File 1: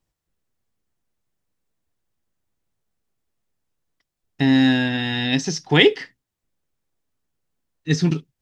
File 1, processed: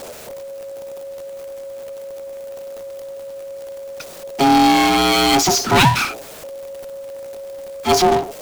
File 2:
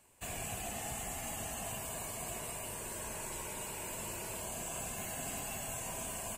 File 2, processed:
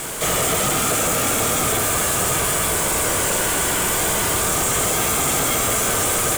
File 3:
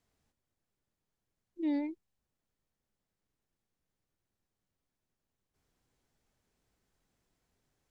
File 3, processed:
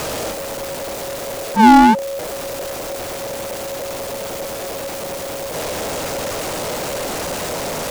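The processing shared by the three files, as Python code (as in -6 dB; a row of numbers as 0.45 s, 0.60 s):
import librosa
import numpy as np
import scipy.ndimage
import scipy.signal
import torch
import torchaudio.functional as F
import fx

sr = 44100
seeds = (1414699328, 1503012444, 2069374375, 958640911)

y = fx.power_curve(x, sr, exponent=0.35)
y = y * np.sin(2.0 * np.pi * 550.0 * np.arange(len(y)) / sr)
y = y * 10.0 ** (-20 / 20.0) / np.sqrt(np.mean(np.square(y)))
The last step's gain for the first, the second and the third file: -2.0 dB, +17.0 dB, +24.0 dB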